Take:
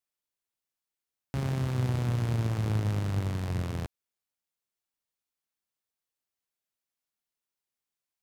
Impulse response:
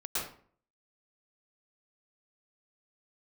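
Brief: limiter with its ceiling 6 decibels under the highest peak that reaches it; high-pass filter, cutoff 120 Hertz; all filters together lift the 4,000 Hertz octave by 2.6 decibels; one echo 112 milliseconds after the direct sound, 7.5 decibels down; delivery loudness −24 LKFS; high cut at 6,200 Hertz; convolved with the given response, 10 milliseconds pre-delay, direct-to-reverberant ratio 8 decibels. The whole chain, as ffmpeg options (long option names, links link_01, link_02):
-filter_complex "[0:a]highpass=120,lowpass=6200,equalizer=frequency=4000:width_type=o:gain=4,alimiter=limit=-24dB:level=0:latency=1,aecho=1:1:112:0.422,asplit=2[link_01][link_02];[1:a]atrim=start_sample=2205,adelay=10[link_03];[link_02][link_03]afir=irnorm=-1:irlink=0,volume=-13.5dB[link_04];[link_01][link_04]amix=inputs=2:normalize=0,volume=9.5dB"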